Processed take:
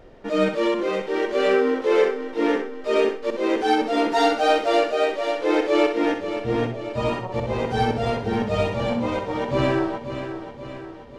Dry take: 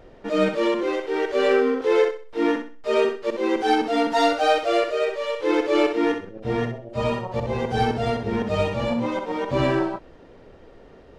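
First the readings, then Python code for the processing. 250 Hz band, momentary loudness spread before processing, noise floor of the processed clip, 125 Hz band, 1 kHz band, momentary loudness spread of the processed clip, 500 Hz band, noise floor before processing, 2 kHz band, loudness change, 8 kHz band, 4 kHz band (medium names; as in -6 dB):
+0.5 dB, 7 LU, -39 dBFS, +0.5 dB, +0.5 dB, 8 LU, +0.5 dB, -48 dBFS, +0.5 dB, +0.5 dB, +0.5 dB, +0.5 dB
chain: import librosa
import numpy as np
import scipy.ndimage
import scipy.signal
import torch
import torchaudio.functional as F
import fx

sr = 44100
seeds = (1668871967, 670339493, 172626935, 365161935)

y = fx.echo_feedback(x, sr, ms=531, feedback_pct=53, wet_db=-10.0)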